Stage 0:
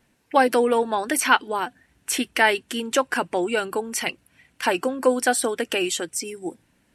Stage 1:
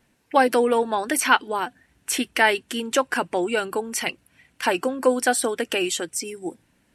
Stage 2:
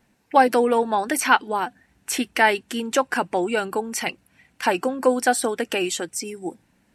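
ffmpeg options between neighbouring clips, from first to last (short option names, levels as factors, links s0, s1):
-af anull
-af "equalizer=f=200:t=o:w=0.33:g=5,equalizer=f=800:t=o:w=0.33:g=4,equalizer=f=3150:t=o:w=0.33:g=-3,equalizer=f=10000:t=o:w=0.33:g=-4"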